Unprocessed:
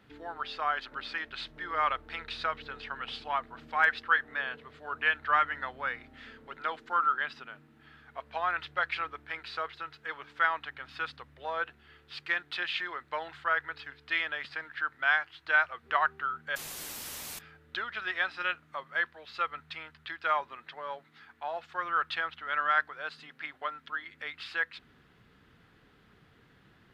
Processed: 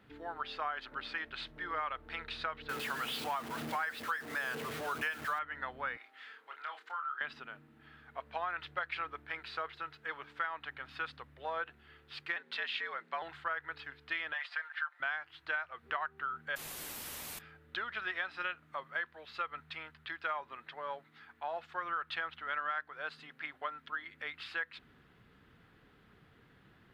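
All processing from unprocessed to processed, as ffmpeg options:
ffmpeg -i in.wav -filter_complex "[0:a]asettb=1/sr,asplit=3[link_01][link_02][link_03];[link_01]atrim=end=2.694[link_04];[link_02]atrim=start=2.69:end=5.39,asetpts=PTS-STARTPTS,afade=type=in:duration=0.004:curve=qsin,afade=type=out:start_time=2.696:duration=0.004:curve=qsin,aeval=exprs='val(0)+0.5*0.02*sgn(val(0))':channel_layout=same,highpass=frequency=100:width=0.5412,highpass=frequency=100:width=1.3066[link_05];[link_03]atrim=start=5.386[link_06];[link_04][link_05]acrossfade=duration=0.004:curve1=hsin:curve2=qsin[link_07];[link_07][link_06]acrossfade=duration=0.004:curve1=qsin:curve2=hsin,asettb=1/sr,asplit=3[link_08][link_09][link_10];[link_08]atrim=end=5.974[link_11];[link_09]atrim=start=5.97:end=7.21,asetpts=PTS-STARTPTS,afade=type=in:duration=0.004:curve=qsin,afade=type=out:start_time=1.236:duration=0.004:curve=qsin,highpass=840,acompressor=threshold=-41dB:ratio=2:attack=3.2:release=140:knee=1:detection=peak,asplit=2[link_12][link_13];[link_13]adelay=28,volume=-6dB[link_14];[link_12][link_14]amix=inputs=2:normalize=0,atrim=end_sample=54684[link_15];[link_10]atrim=start=7.206[link_16];[link_11][link_15]acrossfade=duration=0.004:curve1=hsin:curve2=qsin[link_17];[link_17][link_16]acrossfade=duration=0.004:curve1=qsin:curve2=hsin,asettb=1/sr,asplit=3[link_18][link_19][link_20];[link_18]atrim=end=12.364[link_21];[link_19]atrim=start=12.36:end=13.22,asetpts=PTS-STARTPTS,afade=type=in:duration=0.004:curve=qsin,afade=type=out:start_time=0.856:duration=0.004:curve=qsin,lowpass=9000,afreqshift=94[link_22];[link_20]atrim=start=13.216[link_23];[link_21][link_22]acrossfade=duration=0.004:curve1=hsin:curve2=qsin[link_24];[link_24][link_23]acrossfade=duration=0.004:curve1=qsin:curve2=hsin,asettb=1/sr,asplit=3[link_25][link_26][link_27];[link_25]atrim=end=14.334[link_28];[link_26]atrim=start=14.33:end=15,asetpts=PTS-STARTPTS,afade=type=in:duration=0.004:curve=qsin,afade=type=out:start_time=0.666:duration=0.004:curve=qsin,highpass=frequency=670:width=0.5412,highpass=frequency=670:width=1.3066,highshelf=frequency=12000:gain=-11.5,aecho=1:1:5.7:0.75,atrim=end_sample=29547[link_29];[link_27]atrim=start=14.996[link_30];[link_28][link_29]acrossfade=duration=0.004:curve1=hsin:curve2=qsin[link_31];[link_31][link_30]acrossfade=duration=0.004:curve1=qsin:curve2=hsin,equalizer=frequency=5900:width_type=o:width=1.3:gain=-4.5,acompressor=threshold=-31dB:ratio=10,volume=-1.5dB" out.wav

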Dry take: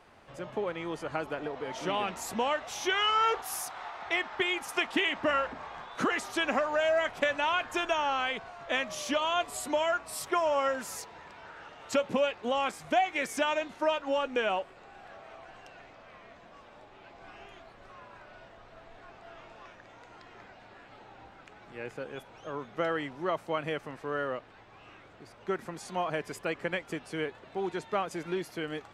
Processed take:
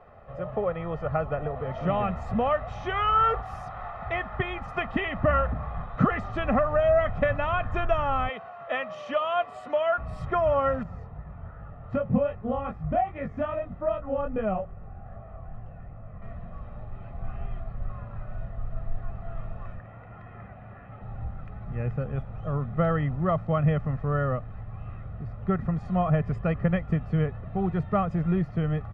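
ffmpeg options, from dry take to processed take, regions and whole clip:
ffmpeg -i in.wav -filter_complex "[0:a]asettb=1/sr,asplit=3[link_01][link_02][link_03];[link_01]atrim=end=8.294[link_04];[link_02]atrim=start=8.29:end=9.98,asetpts=PTS-STARTPTS,afade=type=in:duration=0.004:curve=qsin,afade=type=out:start_time=1.686:duration=0.004:curve=qsin,highpass=450,equalizer=frequency=2900:width=5.6:gain=4.5[link_05];[link_03]atrim=start=9.976[link_06];[link_04][link_05]acrossfade=duration=0.004:curve1=hsin:curve2=qsin[link_07];[link_07][link_06]acrossfade=duration=0.004:curve1=qsin:curve2=hsin,asettb=1/sr,asplit=3[link_08][link_09][link_10];[link_08]atrim=end=10.834[link_11];[link_09]atrim=start=10.83:end=16.22,asetpts=PTS-STARTPTS,afade=type=in:duration=0.004:curve=qsin,afade=type=out:start_time=5.386:duration=0.004:curve=qsin,lowpass=frequency=1200:poles=1,flanger=delay=18:depth=6.9:speed=2.5[link_12];[link_10]atrim=start=16.216[link_13];[link_11][link_12]acrossfade=duration=0.004:curve1=hsin:curve2=qsin[link_14];[link_14][link_13]acrossfade=duration=0.004:curve1=qsin:curve2=hsin,asettb=1/sr,asplit=3[link_15][link_16][link_17];[link_15]atrim=end=19.794[link_18];[link_16]atrim=start=19.79:end=21.02,asetpts=PTS-STARTPTS,afade=type=in:duration=0.004:curve=qsin,afade=type=out:start_time=1.226:duration=0.004:curve=qsin,highpass=frequency=180:poles=1,highshelf=frequency=3500:width_type=q:width=1.5:gain=-8.5[link_19];[link_17]atrim=start=21.016[link_20];[link_18][link_19]acrossfade=duration=0.004:curve1=hsin:curve2=qsin[link_21];[link_21][link_20]acrossfade=duration=0.004:curve1=qsin:curve2=hsin,aecho=1:1:1.6:0.67,asubboost=boost=10.5:cutoff=150,lowpass=1200,volume=6dB" out.wav

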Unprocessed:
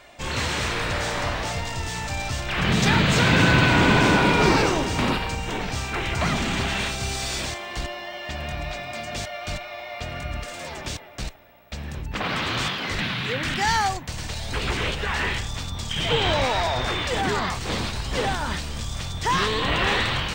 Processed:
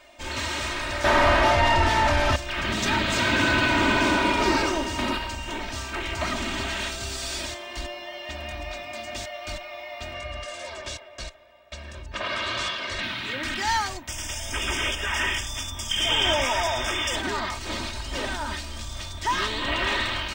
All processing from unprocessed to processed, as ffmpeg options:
ffmpeg -i in.wav -filter_complex "[0:a]asettb=1/sr,asplit=3[link_01][link_02][link_03];[link_01]atrim=end=1.044[link_04];[link_02]atrim=start=1.04:end=2.36,asetpts=PTS-STARTPTS,afade=type=in:duration=0.004:curve=qsin,afade=type=out:start_time=1.316:duration=0.004:curve=qsin,aemphasis=mode=reproduction:type=bsi,asplit=2[link_05][link_06];[link_06]highpass=frequency=720:poles=1,volume=31dB,asoftclip=type=tanh:threshold=-6.5dB[link_07];[link_05][link_07]amix=inputs=2:normalize=0,lowpass=frequency=1600:poles=1,volume=-6dB[link_08];[link_03]atrim=start=2.356[link_09];[link_04][link_08]acrossfade=duration=0.004:curve1=hsin:curve2=qsin[link_10];[link_10][link_09]acrossfade=duration=0.004:curve1=qsin:curve2=hsin,asettb=1/sr,asplit=3[link_11][link_12][link_13];[link_11]atrim=end=10.144[link_14];[link_12]atrim=start=10.14:end=13.03,asetpts=PTS-STARTPTS,afade=type=in:duration=0.004:curve=qsin,afade=type=out:start_time=2.886:duration=0.004:curve=qsin,lowpass=8900,lowshelf=frequency=67:gain=-9.5,aecho=1:1:1.8:0.54,atrim=end_sample=127449[link_15];[link_13]atrim=start=13.026[link_16];[link_14][link_15]acrossfade=duration=0.004:curve1=hsin:curve2=qsin[link_17];[link_17][link_16]acrossfade=duration=0.004:curve1=qsin:curve2=hsin,asettb=1/sr,asplit=3[link_18][link_19][link_20];[link_18]atrim=end=14.084[link_21];[link_19]atrim=start=14.08:end=17.16,asetpts=PTS-STARTPTS,afade=type=in:duration=0.004:curve=qsin,afade=type=out:start_time=3.076:duration=0.004:curve=qsin,asuperstop=centerf=4200:order=12:qfactor=3.5,highshelf=frequency=2700:gain=9[link_22];[link_20]atrim=start=17.156[link_23];[link_21][link_22]acrossfade=duration=0.004:curve1=hsin:curve2=qsin[link_24];[link_24][link_23]acrossfade=duration=0.004:curve1=qsin:curve2=hsin,lowshelf=frequency=420:gain=-3.5,aecho=1:1:3.2:0.8,volume=-4.5dB" out.wav

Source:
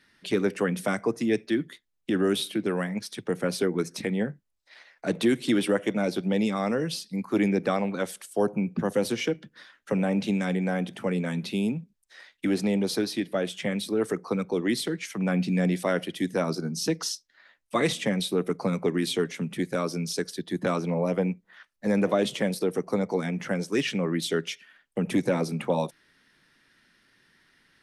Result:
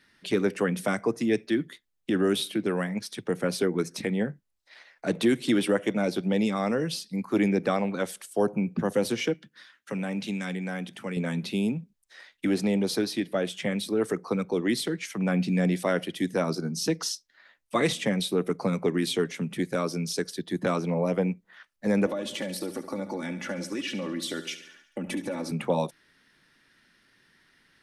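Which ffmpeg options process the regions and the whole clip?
ffmpeg -i in.wav -filter_complex "[0:a]asettb=1/sr,asplit=3[link_01][link_02][link_03];[link_01]atrim=end=9.344[link_04];[link_02]atrim=start=9.34:end=11.17,asetpts=PTS-STARTPTS,afade=type=in:duration=0.004:curve=qsin,afade=type=out:start_time=1.826:duration=0.004:curve=qsin,highpass=frequency=220:poles=1,equalizer=frequency=560:width=0.67:gain=-7.5[link_05];[link_03]atrim=start=11.166[link_06];[link_04][link_05]acrossfade=duration=0.004:curve1=hsin:curve2=qsin[link_07];[link_07][link_06]acrossfade=duration=0.004:curve1=qsin:curve2=hsin,asettb=1/sr,asplit=3[link_08][link_09][link_10];[link_08]atrim=end=22.064[link_11];[link_09]atrim=start=22.06:end=25.51,asetpts=PTS-STARTPTS,afade=type=in:duration=0.004:curve=qsin,afade=type=out:start_time=3.446:duration=0.004:curve=qsin,aecho=1:1:3.5:0.76,atrim=end_sample=152145,acompressor=threshold=-29dB:ratio=5:attack=3.2:release=140:knee=1:detection=peak,aecho=1:1:71|142|213|284|355|426:0.237|0.133|0.0744|0.0416|0.0233|0.0131,atrim=end_sample=152145[link_12];[link_10]atrim=start=25.506[link_13];[link_11][link_12]acrossfade=duration=0.004:curve1=hsin:curve2=qsin[link_14];[link_14][link_13]acrossfade=duration=0.004:curve1=qsin:curve2=hsin" out.wav

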